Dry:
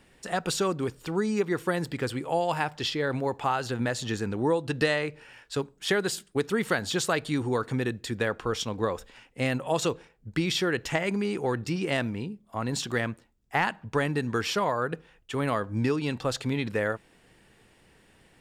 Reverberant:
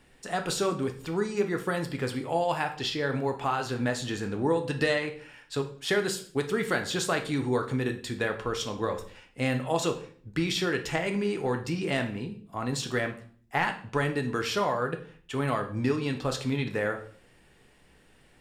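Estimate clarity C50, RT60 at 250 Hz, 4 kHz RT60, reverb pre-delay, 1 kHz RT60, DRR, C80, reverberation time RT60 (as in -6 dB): 11.5 dB, 0.60 s, 0.45 s, 3 ms, 0.45 s, 4.5 dB, 15.5 dB, 0.50 s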